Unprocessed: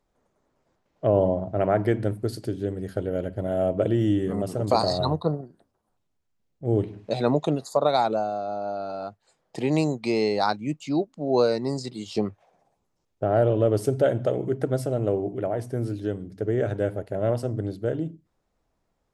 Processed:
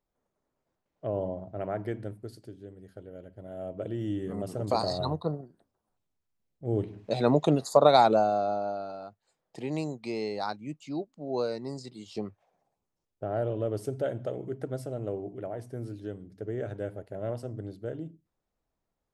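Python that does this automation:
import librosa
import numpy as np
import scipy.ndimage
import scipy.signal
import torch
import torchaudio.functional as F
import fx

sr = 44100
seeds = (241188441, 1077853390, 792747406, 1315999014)

y = fx.gain(x, sr, db=fx.line((1.97, -11.0), (2.65, -17.5), (3.28, -17.5), (4.5, -6.0), (6.72, -6.0), (7.7, 2.5), (8.44, 2.5), (9.07, -9.5)))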